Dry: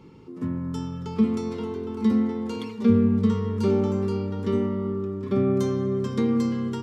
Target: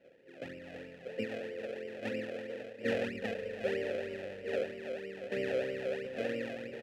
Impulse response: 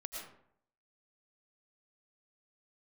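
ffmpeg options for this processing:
-filter_complex "[0:a]asplit=4[a][b][c][d];[b]asetrate=22050,aresample=44100,atempo=2,volume=-4dB[e];[c]asetrate=52444,aresample=44100,atempo=0.840896,volume=-9dB[f];[d]asetrate=66075,aresample=44100,atempo=0.66742,volume=-16dB[g];[a][e][f][g]amix=inputs=4:normalize=0,acrusher=samples=33:mix=1:aa=0.000001:lfo=1:lforange=33:lforate=3.1,asplit=3[h][i][j];[h]bandpass=f=530:t=q:w=8,volume=0dB[k];[i]bandpass=f=1.84k:t=q:w=8,volume=-6dB[l];[j]bandpass=f=2.48k:t=q:w=8,volume=-9dB[m];[k][l][m]amix=inputs=3:normalize=0"

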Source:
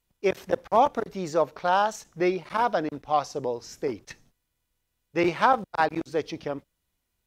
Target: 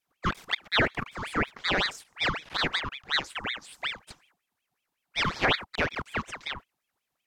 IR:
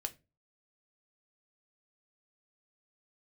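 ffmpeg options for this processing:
-af "afreqshift=250,aeval=exprs='val(0)*sin(2*PI*1700*n/s+1700*0.75/5.4*sin(2*PI*5.4*n/s))':c=same,volume=-1.5dB"

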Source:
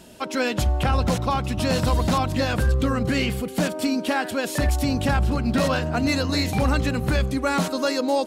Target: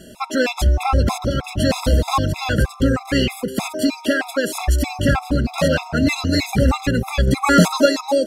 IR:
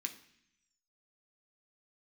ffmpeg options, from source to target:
-filter_complex "[0:a]asettb=1/sr,asplit=3[a][b][c];[a]atrim=end=7.274[d];[b]atrim=start=7.27:end=7.86,asetpts=PTS-STARTPTS,afade=t=in:d=0.004:c=qsin,afade=t=out:st=0.586:d=0.004:c=qsin,acontrast=49[e];[c]atrim=start=7.856[f];[d][e]acrossfade=d=0.004:c1=hsin:c2=qsin[g];[g][f]acrossfade=d=0.004:c1=qsin:c2=hsin,asplit=2[h][i];[i]asuperpass=centerf=5700:order=20:qfactor=5.3[j];[1:a]atrim=start_sample=2205,adelay=133[k];[j][k]afir=irnorm=-1:irlink=0,volume=-11dB[l];[h][l]amix=inputs=2:normalize=0,afftfilt=real='re*gt(sin(2*PI*3.2*pts/sr)*(1-2*mod(floor(b*sr/1024/680),2)),0)':imag='im*gt(sin(2*PI*3.2*pts/sr)*(1-2*mod(floor(b*sr/1024/680),2)),0)':win_size=1024:overlap=0.75,volume=6.5dB"

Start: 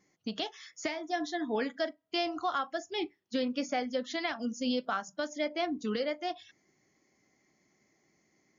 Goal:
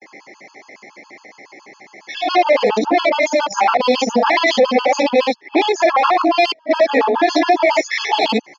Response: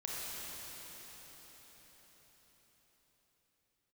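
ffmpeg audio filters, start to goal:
-af "areverse,acompressor=threshold=-33dB:ratio=6,aresample=16000,aeval=exprs='clip(val(0),-1,0.0106)':c=same,aresample=44100,highpass=380,equalizer=f=520:t=q:w=4:g=5,equalizer=f=890:t=q:w=4:g=9,equalizer=f=1.5k:t=q:w=4:g=-9,equalizer=f=2.2k:t=q:w=4:g=6,equalizer=f=3.5k:t=q:w=4:g=-5,lowpass=f=5k:w=0.5412,lowpass=f=5k:w=1.3066,aecho=1:1:45|59:0.447|0.631,alimiter=level_in=34dB:limit=-1dB:release=50:level=0:latency=1,afftfilt=real='re*gt(sin(2*PI*7.2*pts/sr)*(1-2*mod(floor(b*sr/1024/860),2)),0)':imag='im*gt(sin(2*PI*7.2*pts/sr)*(1-2*mod(floor(b*sr/1024/860),2)),0)':win_size=1024:overlap=0.75,volume=-2.5dB"

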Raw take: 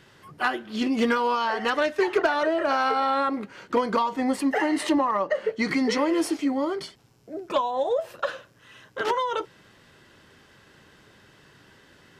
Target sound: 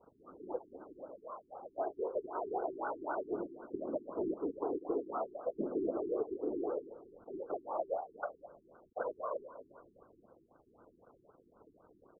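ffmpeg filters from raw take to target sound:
-filter_complex "[0:a]acrossover=split=690[a][b];[a]acontrast=86[c];[c][b]amix=inputs=2:normalize=0,highpass=f=200:t=q:w=0.5412,highpass=f=200:t=q:w=1.307,lowpass=f=3.3k:t=q:w=0.5176,lowpass=f=3.3k:t=q:w=0.7071,lowpass=f=3.3k:t=q:w=1.932,afreqshift=100,acompressor=threshold=-24dB:ratio=6,asettb=1/sr,asplit=3[d][e][f];[d]atrim=end=0.584[g];[e]atrim=start=0.58:end=1.79,asetpts=PTS-STARTPTS,afade=t=in:d=0.004:c=qsin,afade=t=out:st=1.206:d=0.004:c=qsin,asplit=3[h][i][j];[h]bandpass=f=730:t=q:w=8,volume=0dB[k];[i]bandpass=f=1.09k:t=q:w=8,volume=-6dB[l];[j]bandpass=f=2.44k:t=q:w=8,volume=-9dB[m];[k][l][m]amix=inputs=3:normalize=0[n];[f]atrim=start=1.786[o];[g][n]acrossfade=d=0.004:c1=hsin:c2=qsin[p];[p][o]acrossfade=d=0.004:c1=qsin:c2=hsin,aecho=1:1:197|394|591|788|985:0.178|0.0889|0.0445|0.0222|0.0111,acrusher=bits=7:mix=0:aa=0.000001,afftfilt=real='hypot(re,im)*cos(2*PI*random(0))':imag='hypot(re,im)*sin(2*PI*random(1))':win_size=512:overlap=0.75,afftfilt=real='re*lt(b*sr/1024,400*pow(1600/400,0.5+0.5*sin(2*PI*3.9*pts/sr)))':imag='im*lt(b*sr/1024,400*pow(1600/400,0.5+0.5*sin(2*PI*3.9*pts/sr)))':win_size=1024:overlap=0.75,volume=-3dB"

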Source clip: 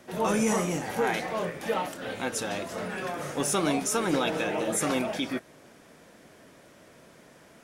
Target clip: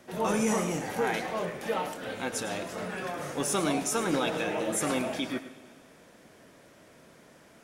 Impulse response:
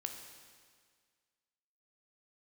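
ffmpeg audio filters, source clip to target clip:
-filter_complex "[0:a]asplit=2[a][b];[1:a]atrim=start_sample=2205,adelay=105[c];[b][c]afir=irnorm=-1:irlink=0,volume=-10dB[d];[a][d]amix=inputs=2:normalize=0,volume=-2dB"

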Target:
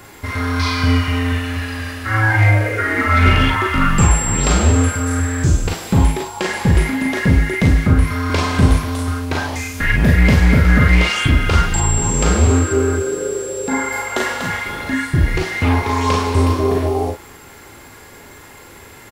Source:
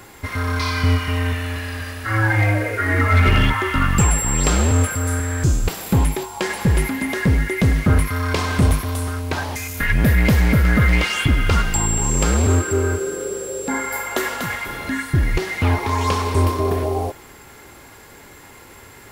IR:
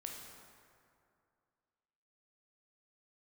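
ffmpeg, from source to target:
-filter_complex "[0:a]acrossover=split=8900[a][b];[b]acompressor=threshold=-49dB:ratio=4:attack=1:release=60[c];[a][c]amix=inputs=2:normalize=0,asplit=2[d][e];[e]aecho=0:1:38|50:0.631|0.473[f];[d][f]amix=inputs=2:normalize=0,asettb=1/sr,asplit=3[g][h][i];[g]atrim=end=7.704[j];[h]atrim=start=7.7:end=8.3,asetpts=PTS-STARTPTS,afade=t=in:d=0.004:c=qsin,afade=t=out:st=0.596:d=0.004:c=qsin,acrossover=split=270[k][l];[l]acompressor=threshold=-22dB:ratio=6[m];[k][m]amix=inputs=2:normalize=0[n];[i]atrim=start=8.296[o];[j][n]acrossfade=d=0.004:c1=hsin:c2=qsin[p];[p][o]acrossfade=d=0.004:c1=qsin:c2=hsin,volume=1dB"

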